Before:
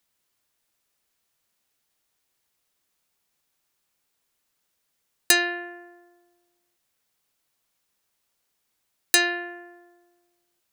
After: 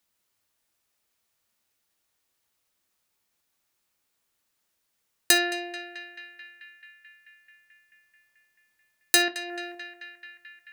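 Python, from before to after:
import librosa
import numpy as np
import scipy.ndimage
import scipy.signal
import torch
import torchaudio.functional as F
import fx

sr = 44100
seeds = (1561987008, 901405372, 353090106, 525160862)

y = fx.over_compress(x, sr, threshold_db=-40.0, ratio=-1.0, at=(9.28, 9.75))
y = fx.echo_banded(y, sr, ms=218, feedback_pct=80, hz=2000.0, wet_db=-12)
y = fx.rev_gated(y, sr, seeds[0], gate_ms=90, shape='falling', drr_db=7.5)
y = y * librosa.db_to_amplitude(-1.5)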